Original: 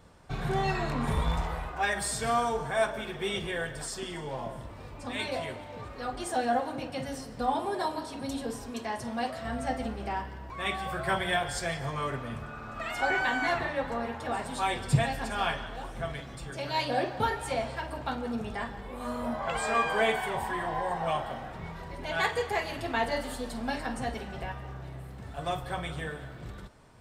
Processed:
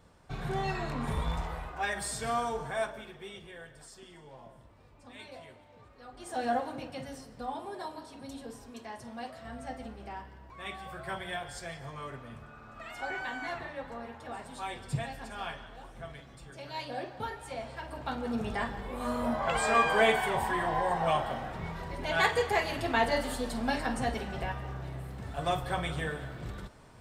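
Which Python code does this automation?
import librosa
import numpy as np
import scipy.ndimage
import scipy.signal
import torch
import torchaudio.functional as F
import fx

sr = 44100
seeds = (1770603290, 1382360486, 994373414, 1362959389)

y = fx.gain(x, sr, db=fx.line((2.71, -4.0), (3.37, -14.5), (6.1, -14.5), (6.47, -2.0), (7.49, -9.0), (17.51, -9.0), (18.48, 2.0)))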